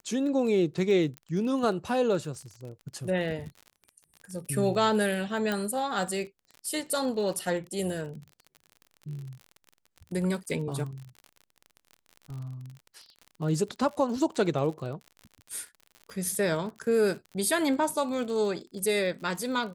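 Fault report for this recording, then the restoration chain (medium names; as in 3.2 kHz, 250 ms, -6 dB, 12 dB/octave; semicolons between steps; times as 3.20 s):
crackle 43 per s -37 dBFS
1.17 s: pop -25 dBFS
5.52 s: pop -16 dBFS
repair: de-click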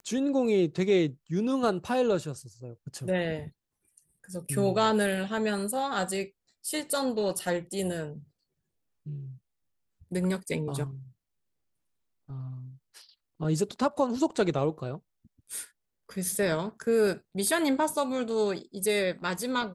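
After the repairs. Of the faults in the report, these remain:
nothing left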